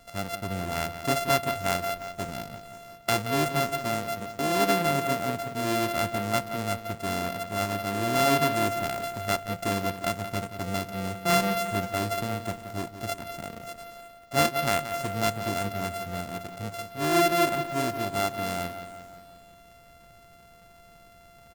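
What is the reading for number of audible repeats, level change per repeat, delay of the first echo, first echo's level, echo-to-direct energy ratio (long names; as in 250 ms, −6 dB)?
5, −4.5 dB, 177 ms, −11.5 dB, −9.5 dB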